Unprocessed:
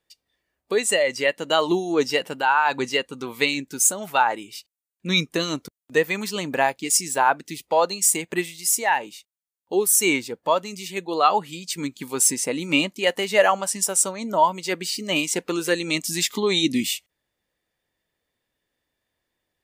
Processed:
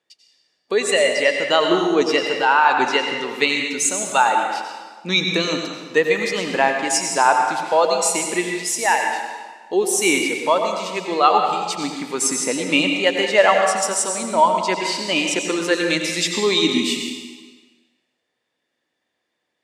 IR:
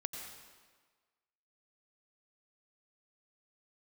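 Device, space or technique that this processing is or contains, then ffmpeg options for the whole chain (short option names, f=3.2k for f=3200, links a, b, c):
supermarket ceiling speaker: -filter_complex "[0:a]highpass=210,lowpass=6.9k[a];[1:a]atrim=start_sample=2205[b];[a][b]afir=irnorm=-1:irlink=0,volume=5dB"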